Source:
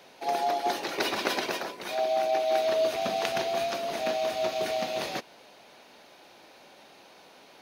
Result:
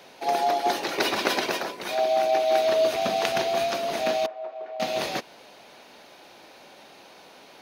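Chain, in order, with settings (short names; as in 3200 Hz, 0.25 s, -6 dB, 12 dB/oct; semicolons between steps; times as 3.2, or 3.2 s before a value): 4.26–4.8 ladder band-pass 780 Hz, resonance 20%; gain +4 dB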